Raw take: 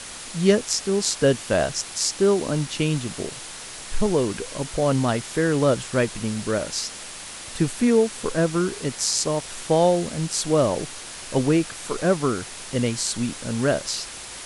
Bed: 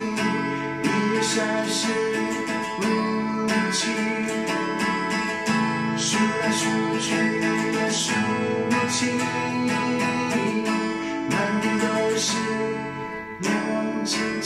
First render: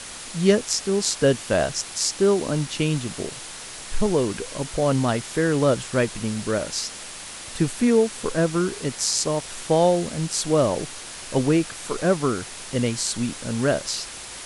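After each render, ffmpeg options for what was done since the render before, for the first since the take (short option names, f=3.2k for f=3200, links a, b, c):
-af anull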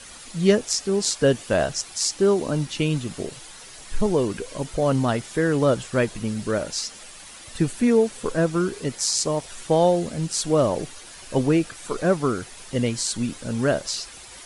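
-af "afftdn=nr=9:nf=-38"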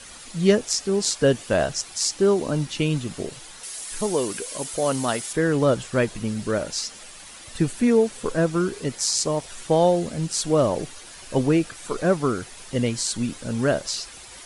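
-filter_complex "[0:a]asettb=1/sr,asplit=3[a][b][c];[a]atrim=end=3.634[d];[b]atrim=start=3.63:end=5.33,asetpts=PTS-STARTPTS,afade=t=in:d=0.004:c=qsin,afade=t=out:st=1.696:d=0.004:c=qsin,aemphasis=mode=production:type=bsi[e];[c]atrim=start=5.326[f];[d][e]acrossfade=d=0.004:c1=hsin:c2=qsin[g];[g][f]acrossfade=d=0.004:c1=qsin:c2=hsin"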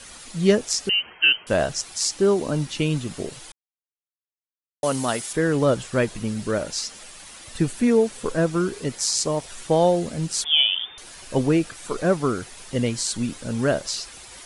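-filter_complex "[0:a]asettb=1/sr,asplit=3[a][b][c];[a]atrim=end=0.894[d];[b]atrim=start=0.89:end=1.47,asetpts=PTS-STARTPTS,afade=t=in:d=0.004:c=qsin,afade=t=out:st=0.576:d=0.004:c=qsin,lowpass=f=2.7k:t=q:w=0.5098,lowpass=f=2.7k:t=q:w=0.6013,lowpass=f=2.7k:t=q:w=0.9,lowpass=f=2.7k:t=q:w=2.563,afreqshift=-3200[e];[c]atrim=start=1.466[f];[d][e]acrossfade=d=0.004:c1=hsin:c2=qsin[g];[g][f]acrossfade=d=0.004:c1=qsin:c2=hsin,asettb=1/sr,asplit=3[h][i][j];[h]atrim=end=10.444[k];[i]atrim=start=10.44:end=10.98,asetpts=PTS-STARTPTS,afade=t=in:d=0.004:c=qsin,afade=t=out:st=0.536:d=0.004:c=qsin,lowpass=f=3.1k:t=q:w=0.5098,lowpass=f=3.1k:t=q:w=0.6013,lowpass=f=3.1k:t=q:w=0.9,lowpass=f=3.1k:t=q:w=2.563,afreqshift=-3600[l];[j]atrim=start=10.976[m];[k][l]acrossfade=d=0.004:c1=hsin:c2=qsin[n];[n][m]acrossfade=d=0.004:c1=qsin:c2=hsin,asplit=3[o][p][q];[o]atrim=end=3.52,asetpts=PTS-STARTPTS,afade=t=out:st=3.516:d=0.004:c=hsin[r];[p]atrim=start=3.52:end=4.83,asetpts=PTS-STARTPTS,volume=0[s];[q]atrim=start=4.83,asetpts=PTS-STARTPTS,afade=t=in:d=0.004:c=hsin[t];[r][s][t]concat=n=3:v=0:a=1"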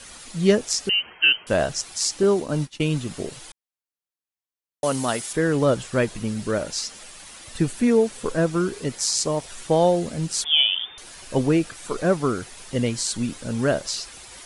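-filter_complex "[0:a]asettb=1/sr,asplit=3[a][b][c];[a]atrim=end=2.234[d];[b]atrim=start=2.23:end=2.95,asetpts=PTS-STARTPTS,afade=t=in:d=0.004:c=qsin,afade=t=out:st=0.716:d=0.004:c=qsin,agate=range=-33dB:threshold=-25dB:ratio=3:release=100:detection=peak[e];[c]atrim=start=2.946[f];[d][e]acrossfade=d=0.004:c1=hsin:c2=qsin[g];[g][f]acrossfade=d=0.004:c1=qsin:c2=hsin"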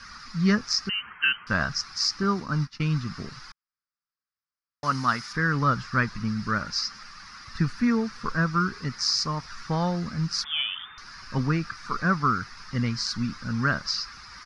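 -af "firequalizer=gain_entry='entry(210,0);entry(330,-12);entry(600,-16);entry(1200,9);entry(3200,-12);entry(5000,5);entry(7800,-25)':delay=0.05:min_phase=1"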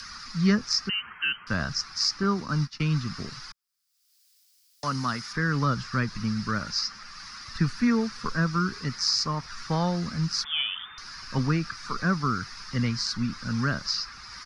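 -filter_complex "[0:a]acrossover=split=170|550|3100[a][b][c][d];[c]alimiter=limit=-21.5dB:level=0:latency=1:release=204[e];[d]acompressor=mode=upward:threshold=-37dB:ratio=2.5[f];[a][b][e][f]amix=inputs=4:normalize=0"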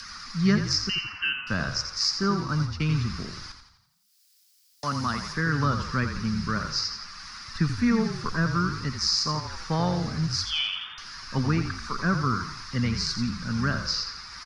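-filter_complex "[0:a]asplit=7[a][b][c][d][e][f][g];[b]adelay=85,afreqshift=-35,volume=-8dB[h];[c]adelay=170,afreqshift=-70,volume=-14dB[i];[d]adelay=255,afreqshift=-105,volume=-20dB[j];[e]adelay=340,afreqshift=-140,volume=-26.1dB[k];[f]adelay=425,afreqshift=-175,volume=-32.1dB[l];[g]adelay=510,afreqshift=-210,volume=-38.1dB[m];[a][h][i][j][k][l][m]amix=inputs=7:normalize=0"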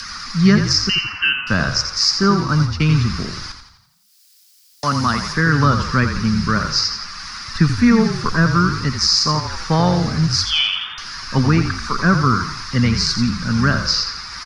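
-af "volume=10dB,alimiter=limit=-3dB:level=0:latency=1"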